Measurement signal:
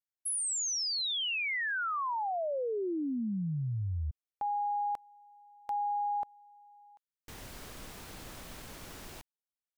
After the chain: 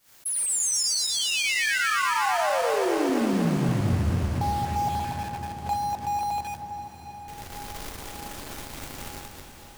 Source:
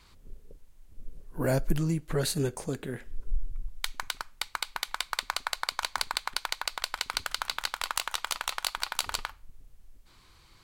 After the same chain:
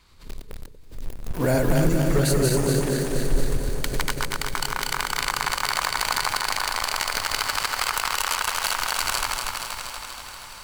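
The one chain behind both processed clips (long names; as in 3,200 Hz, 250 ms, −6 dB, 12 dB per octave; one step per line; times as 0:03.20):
feedback delay that plays each chunk backwards 119 ms, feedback 80%, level −2 dB
dynamic equaliser 3,700 Hz, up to −8 dB, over −48 dBFS, Q 4.4
in parallel at −3 dB: bit reduction 6 bits
on the sum: wave folding −10.5 dBFS
on a send: feedback delay with all-pass diffusion 667 ms, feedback 60%, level −13 dB
on the sum: background raised ahead of every attack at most 150 dB per second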